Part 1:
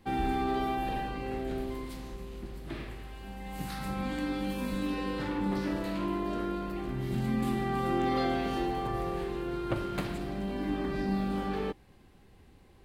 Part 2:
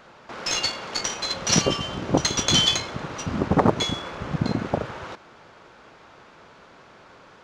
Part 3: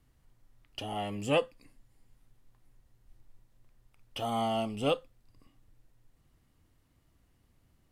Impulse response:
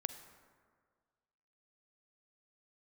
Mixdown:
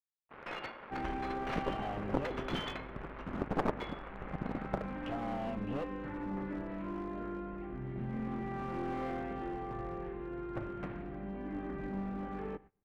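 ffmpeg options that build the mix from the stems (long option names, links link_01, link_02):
-filter_complex "[0:a]adelay=850,volume=-9.5dB,asplit=2[link_01][link_02];[link_02]volume=-9dB[link_03];[1:a]equalizer=frequency=93:width=0.9:gain=-8,aeval=exprs='sgn(val(0))*max(abs(val(0))-0.015,0)':channel_layout=same,volume=-7dB,asplit=2[link_04][link_05];[link_05]volume=-11dB[link_06];[2:a]acompressor=threshold=-36dB:ratio=3,adelay=900,volume=1.5dB[link_07];[link_04][link_07]amix=inputs=2:normalize=0,acompressor=threshold=-37dB:ratio=1.5,volume=0dB[link_08];[3:a]atrim=start_sample=2205[link_09];[link_03][link_06]amix=inputs=2:normalize=0[link_10];[link_10][link_09]afir=irnorm=-1:irlink=0[link_11];[link_01][link_08][link_11]amix=inputs=3:normalize=0,lowpass=frequency=2200:width=0.5412,lowpass=frequency=2200:width=1.3066,agate=range=-21dB:threshold=-53dB:ratio=16:detection=peak,aeval=exprs='clip(val(0),-1,0.0168)':channel_layout=same"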